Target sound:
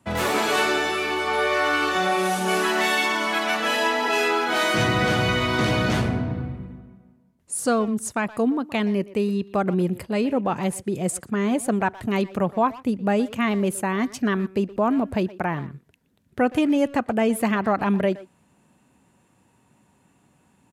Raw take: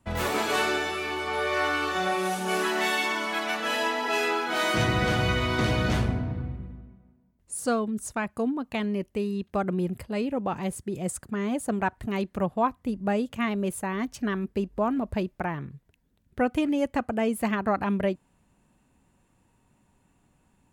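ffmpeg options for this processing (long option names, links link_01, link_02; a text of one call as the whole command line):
ffmpeg -i in.wav -filter_complex "[0:a]highpass=110,asplit=2[link_01][link_02];[link_02]alimiter=limit=-20.5dB:level=0:latency=1,volume=0dB[link_03];[link_01][link_03]amix=inputs=2:normalize=0,aresample=32000,aresample=44100,asplit=2[link_04][link_05];[link_05]adelay=120,highpass=300,lowpass=3400,asoftclip=type=hard:threshold=-19.5dB,volume=-16dB[link_06];[link_04][link_06]amix=inputs=2:normalize=0" out.wav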